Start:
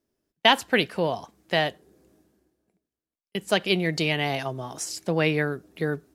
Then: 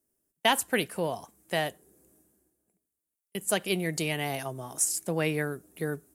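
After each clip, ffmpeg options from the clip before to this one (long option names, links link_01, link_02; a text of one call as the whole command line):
ffmpeg -i in.wav -af "highshelf=frequency=6500:width_type=q:width=1.5:gain=13.5,volume=-5dB" out.wav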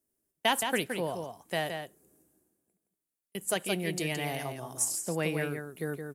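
ffmpeg -i in.wav -filter_complex "[0:a]asplit=2[link_01][link_02];[link_02]adelay=169.1,volume=-6dB,highshelf=frequency=4000:gain=-3.8[link_03];[link_01][link_03]amix=inputs=2:normalize=0,volume=-3dB" out.wav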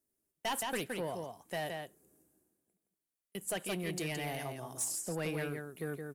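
ffmpeg -i in.wav -af "asoftclip=type=tanh:threshold=-26dB,volume=-3dB" out.wav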